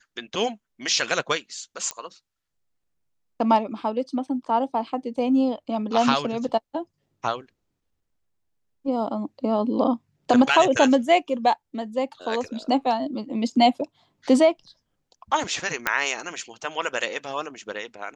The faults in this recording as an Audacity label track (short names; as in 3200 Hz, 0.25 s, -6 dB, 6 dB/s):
1.910000	1.910000	pop -14 dBFS
15.870000	15.870000	pop -6 dBFS